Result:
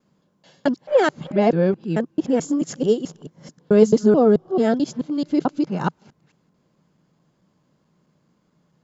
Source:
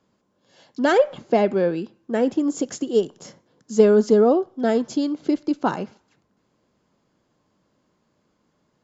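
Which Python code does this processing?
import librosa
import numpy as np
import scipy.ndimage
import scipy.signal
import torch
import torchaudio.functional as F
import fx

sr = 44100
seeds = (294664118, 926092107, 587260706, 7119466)

y = fx.local_reverse(x, sr, ms=218.0)
y = fx.peak_eq(y, sr, hz=160.0, db=12.0, octaves=0.52)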